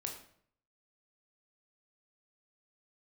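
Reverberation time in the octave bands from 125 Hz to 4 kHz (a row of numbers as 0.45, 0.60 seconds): 0.80, 0.65, 0.65, 0.55, 0.55, 0.45 seconds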